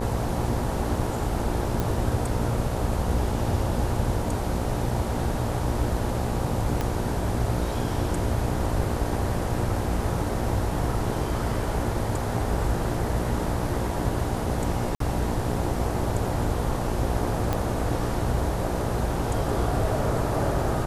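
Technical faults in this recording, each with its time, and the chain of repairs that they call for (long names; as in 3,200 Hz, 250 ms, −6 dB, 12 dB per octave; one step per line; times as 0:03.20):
mains buzz 60 Hz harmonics 16 −31 dBFS
0:01.80: click
0:06.81: click −13 dBFS
0:14.95–0:15.00: drop-out 53 ms
0:17.53: click −12 dBFS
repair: click removal
hum removal 60 Hz, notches 16
repair the gap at 0:14.95, 53 ms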